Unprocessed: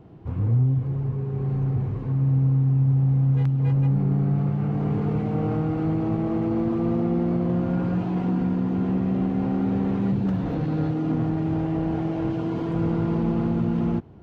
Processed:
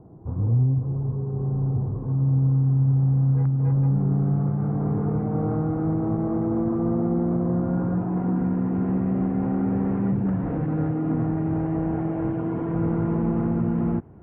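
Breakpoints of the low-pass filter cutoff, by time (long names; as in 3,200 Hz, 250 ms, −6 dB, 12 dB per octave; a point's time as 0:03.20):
low-pass filter 24 dB per octave
0:01.98 1,100 Hz
0:02.79 1,500 Hz
0:08.01 1,500 Hz
0:08.67 2,000 Hz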